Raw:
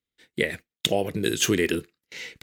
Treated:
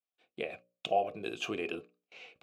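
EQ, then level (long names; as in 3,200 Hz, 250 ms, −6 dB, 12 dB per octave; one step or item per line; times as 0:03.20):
formant filter a
low-shelf EQ 250 Hz +8.5 dB
mains-hum notches 60/120/180/240/300/360/420/480/540/600 Hz
+3.5 dB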